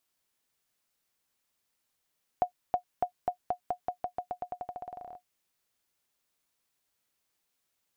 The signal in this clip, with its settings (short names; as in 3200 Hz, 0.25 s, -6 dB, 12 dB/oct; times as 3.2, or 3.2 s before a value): bouncing ball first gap 0.32 s, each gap 0.89, 721 Hz, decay 97 ms -15.5 dBFS